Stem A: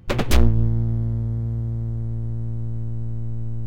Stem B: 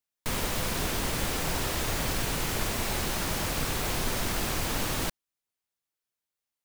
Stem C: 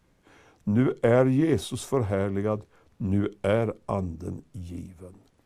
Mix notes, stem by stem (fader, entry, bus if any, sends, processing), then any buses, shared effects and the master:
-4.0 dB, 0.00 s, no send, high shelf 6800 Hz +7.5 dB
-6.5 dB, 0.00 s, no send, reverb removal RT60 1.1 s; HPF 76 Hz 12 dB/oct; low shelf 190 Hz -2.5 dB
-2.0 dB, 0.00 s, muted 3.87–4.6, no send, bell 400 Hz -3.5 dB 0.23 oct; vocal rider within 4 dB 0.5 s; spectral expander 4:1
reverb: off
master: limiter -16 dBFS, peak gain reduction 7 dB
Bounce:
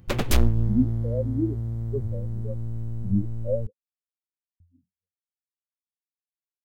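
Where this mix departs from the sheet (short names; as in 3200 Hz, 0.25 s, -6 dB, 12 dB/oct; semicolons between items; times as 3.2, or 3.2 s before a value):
stem B: muted; master: missing limiter -16 dBFS, peak gain reduction 7 dB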